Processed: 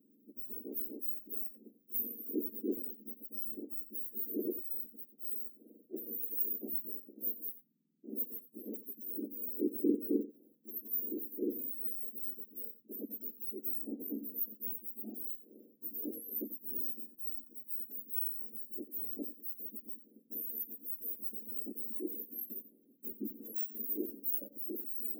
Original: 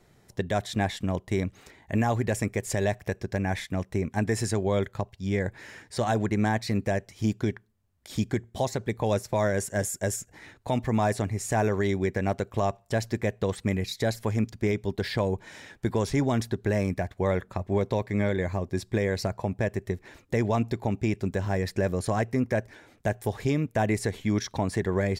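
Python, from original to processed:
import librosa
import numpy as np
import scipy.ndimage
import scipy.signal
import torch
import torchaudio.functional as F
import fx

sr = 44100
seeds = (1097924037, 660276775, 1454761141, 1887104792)

y = fx.octave_mirror(x, sr, pivot_hz=1800.0)
y = scipy.signal.sosfilt(scipy.signal.cheby2(4, 60, [1000.0, 6800.0], 'bandstop', fs=sr, output='sos'), y)
y = y + 10.0 ** (-15.5 / 20.0) * np.pad(y, (int(89 * sr / 1000.0), 0))[:len(y)]
y = y * librosa.db_to_amplitude(1.0)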